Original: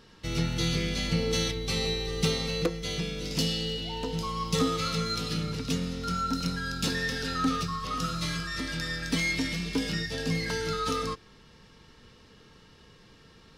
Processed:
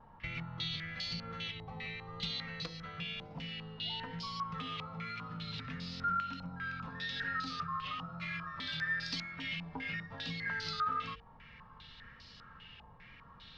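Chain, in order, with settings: peaking EQ 370 Hz -15 dB 0.98 oct; compression, threshold -39 dBFS, peak gain reduction 15 dB; distance through air 65 m; hum notches 50/100/150/200/250/300/350/400/450/500 Hz; vibrato 1 Hz 36 cents; step-sequenced low-pass 5 Hz 860–4700 Hz

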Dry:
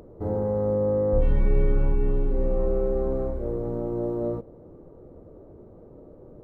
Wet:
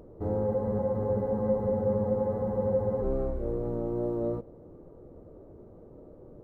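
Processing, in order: wow and flutter 20 cents; spectral freeze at 0.48 s, 2.54 s; trim -2.5 dB

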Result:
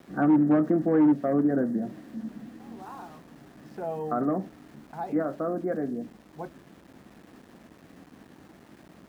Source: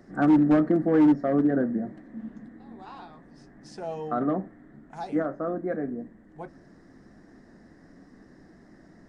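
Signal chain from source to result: in parallel at -2 dB: compression, threshold -30 dBFS, peak gain reduction 13 dB; on the sum: low-pass 1.8 kHz 12 dB/octave; small samples zeroed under -47.5 dBFS; high-pass 55 Hz; trim -3 dB

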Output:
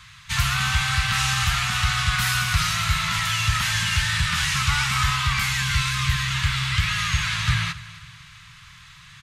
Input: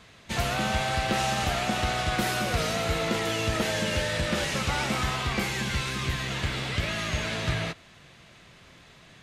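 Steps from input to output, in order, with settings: Chebyshev band-stop 140–1100 Hz, order 3; on a send: feedback delay 268 ms, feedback 43%, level -18.5 dB; on the sum: trim +8 dB

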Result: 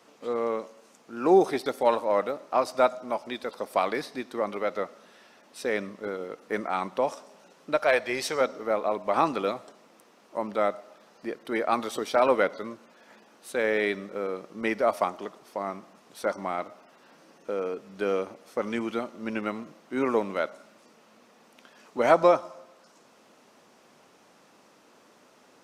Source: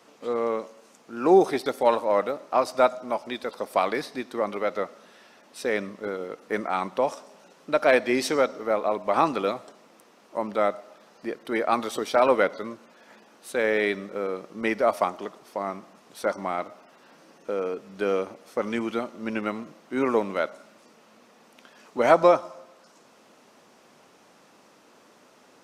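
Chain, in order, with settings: 7.76–8.41 s: peaking EQ 270 Hz -11.5 dB 0.88 oct; trim -2 dB

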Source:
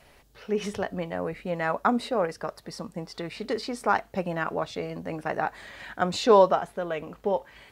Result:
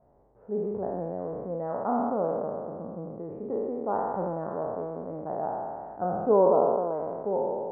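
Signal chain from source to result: spectral sustain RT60 2.30 s; inverse Chebyshev low-pass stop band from 3.8 kHz, stop band 70 dB; bass shelf 61 Hz -9 dB; trim -5 dB

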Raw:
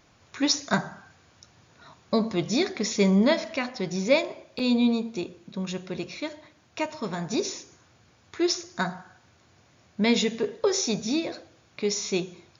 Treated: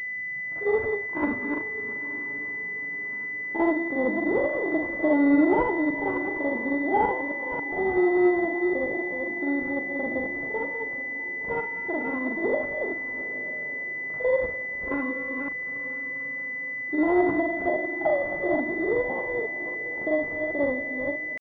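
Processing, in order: chunks repeated in reverse 166 ms, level -6.5 dB; in parallel at -2 dB: compression 8:1, threshold -30 dBFS, peak gain reduction 15 dB; on the sum: pitch shift +7 st; distance through air 120 m; granular stretch 1.7×, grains 190 ms; on a send: echo that smears into a reverb 920 ms, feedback 43%, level -14 dB; on the sum: class-D stage that switches slowly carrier 2 kHz

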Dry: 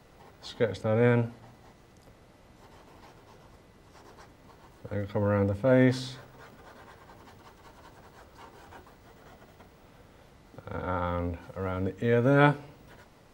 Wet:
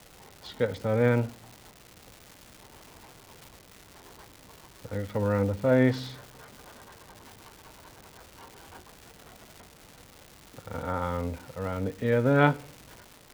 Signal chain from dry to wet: low-pass 5.1 kHz; crackle 490 per s -38 dBFS

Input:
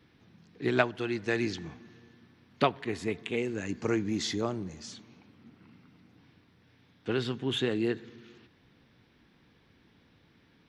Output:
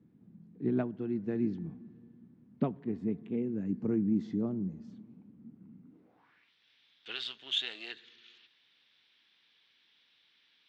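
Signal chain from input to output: 7.15–7.92 s: partial rectifier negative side -7 dB; band-pass sweep 200 Hz -> 3.4 kHz, 5.83–6.53 s; trim +6 dB

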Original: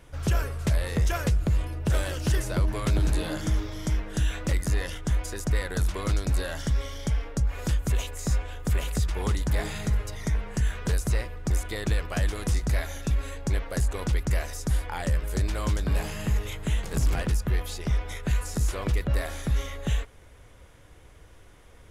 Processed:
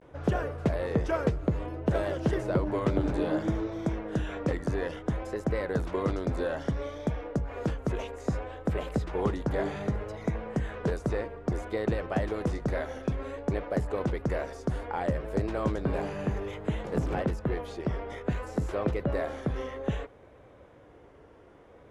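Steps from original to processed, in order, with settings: vibrato 0.6 Hz 94 cents; band-pass filter 450 Hz, Q 0.79; trim +6 dB

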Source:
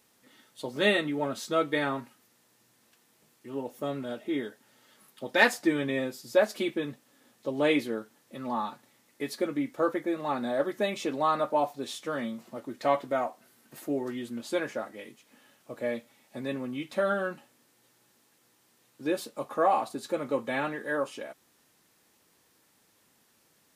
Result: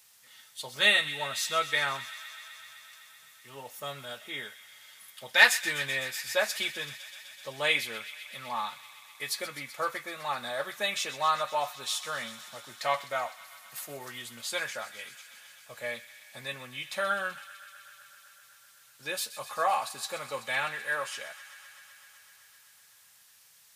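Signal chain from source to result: high-pass 77 Hz; amplifier tone stack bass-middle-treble 10-0-10; on a send: feedback echo behind a high-pass 127 ms, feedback 83%, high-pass 1.7 kHz, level -14 dB; on the sum: trim +9 dB

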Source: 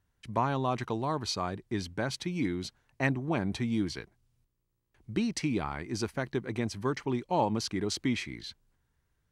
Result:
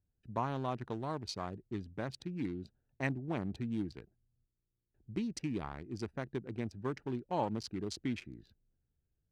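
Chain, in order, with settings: local Wiener filter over 41 samples; trim -6 dB

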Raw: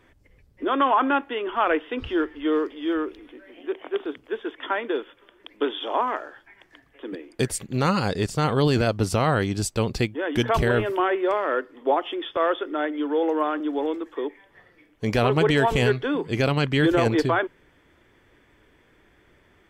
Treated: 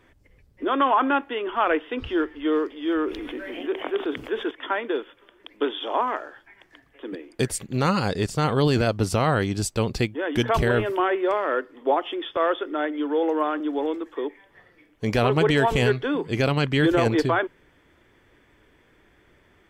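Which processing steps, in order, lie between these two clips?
2.88–4.51 s: level flattener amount 50%

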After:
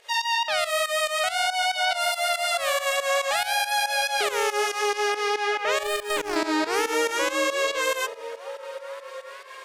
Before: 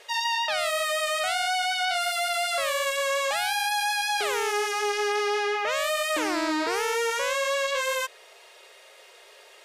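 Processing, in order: volume shaper 140 bpm, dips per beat 2, -15 dB, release 142 ms; 5.83–6.36 s: power-law waveshaper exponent 2; repeats whose band climbs or falls 426 ms, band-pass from 210 Hz, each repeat 0.7 oct, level -5 dB; trim +3 dB

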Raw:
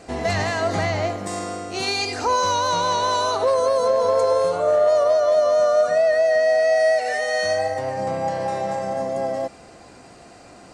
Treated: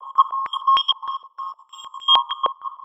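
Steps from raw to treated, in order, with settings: in parallel at +1 dB: compression, threshold -26 dBFS, peak gain reduction 11.5 dB; on the sum: trance gate "xxx..x...x" 113 bpm -24 dB; whistle 480 Hz -35 dBFS; vocoder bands 32, square 286 Hz; wide varispeed 3.77×; on a send at -11 dB: reverberation RT60 1.6 s, pre-delay 5 ms; on the sum: careless resampling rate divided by 2×, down filtered, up hold; step-sequenced low-pass 6.5 Hz 530–2700 Hz; trim -2.5 dB

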